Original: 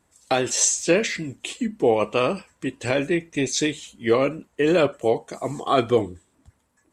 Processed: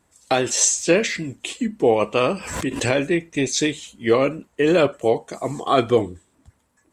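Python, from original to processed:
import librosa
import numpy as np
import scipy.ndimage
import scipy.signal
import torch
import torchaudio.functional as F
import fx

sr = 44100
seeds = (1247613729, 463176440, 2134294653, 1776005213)

y = fx.pre_swell(x, sr, db_per_s=60.0, at=(2.22, 2.95))
y = F.gain(torch.from_numpy(y), 2.0).numpy()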